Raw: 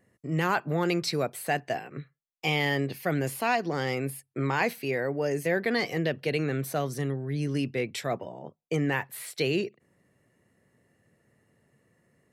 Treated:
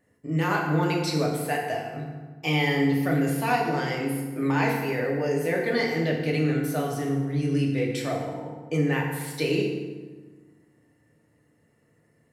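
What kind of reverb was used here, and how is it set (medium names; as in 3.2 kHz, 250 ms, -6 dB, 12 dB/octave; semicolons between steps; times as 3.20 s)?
FDN reverb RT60 1.4 s, low-frequency decay 1.3×, high-frequency decay 0.65×, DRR -2 dB; trim -2.5 dB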